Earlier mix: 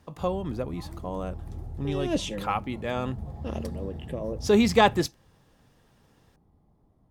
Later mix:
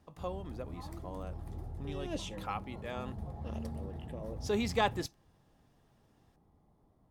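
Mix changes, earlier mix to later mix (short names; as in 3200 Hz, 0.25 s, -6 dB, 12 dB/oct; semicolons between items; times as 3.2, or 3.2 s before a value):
speech -9.5 dB; master: add low shelf 330 Hz -5.5 dB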